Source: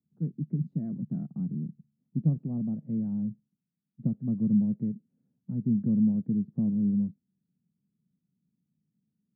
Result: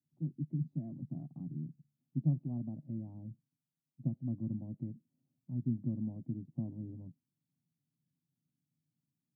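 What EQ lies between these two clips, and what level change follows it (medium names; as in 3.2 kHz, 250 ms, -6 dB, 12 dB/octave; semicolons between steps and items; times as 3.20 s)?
static phaser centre 300 Hz, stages 8; -3.5 dB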